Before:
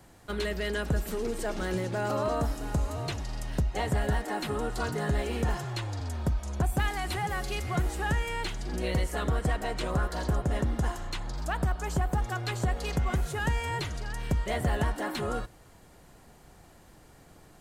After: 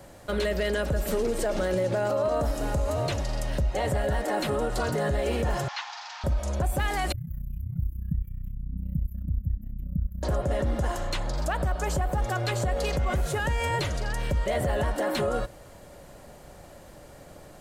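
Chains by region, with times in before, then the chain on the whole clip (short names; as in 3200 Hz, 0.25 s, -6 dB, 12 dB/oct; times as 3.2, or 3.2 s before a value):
5.68–6.24 delta modulation 32 kbps, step -39.5 dBFS + steep high-pass 770 Hz 72 dB/oct
7.12–10.23 inverse Chebyshev band-stop 390–9200 Hz + AM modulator 31 Hz, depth 75%
whole clip: bell 570 Hz +13 dB 0.27 oct; limiter -24 dBFS; gain +5.5 dB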